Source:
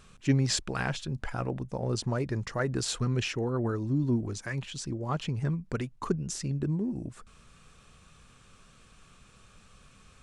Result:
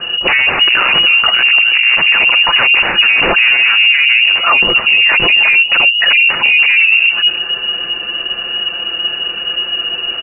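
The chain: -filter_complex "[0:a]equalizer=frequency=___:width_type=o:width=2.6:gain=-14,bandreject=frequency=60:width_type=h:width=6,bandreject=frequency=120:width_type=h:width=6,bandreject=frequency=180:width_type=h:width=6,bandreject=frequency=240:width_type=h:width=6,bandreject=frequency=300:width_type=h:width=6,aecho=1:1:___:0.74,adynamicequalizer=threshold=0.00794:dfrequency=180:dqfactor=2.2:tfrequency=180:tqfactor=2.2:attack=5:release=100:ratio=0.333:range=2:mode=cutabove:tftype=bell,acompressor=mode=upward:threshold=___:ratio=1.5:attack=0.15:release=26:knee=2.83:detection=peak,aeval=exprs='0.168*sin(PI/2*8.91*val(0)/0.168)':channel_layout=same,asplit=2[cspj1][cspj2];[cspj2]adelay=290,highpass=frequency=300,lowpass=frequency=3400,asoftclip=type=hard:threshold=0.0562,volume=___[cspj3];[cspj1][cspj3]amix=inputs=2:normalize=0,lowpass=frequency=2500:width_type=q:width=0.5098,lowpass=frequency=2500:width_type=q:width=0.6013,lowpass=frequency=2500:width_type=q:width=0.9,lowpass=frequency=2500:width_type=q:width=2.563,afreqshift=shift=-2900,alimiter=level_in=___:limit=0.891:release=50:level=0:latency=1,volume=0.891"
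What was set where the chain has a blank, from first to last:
630, 5.9, 0.00355, 0.282, 5.01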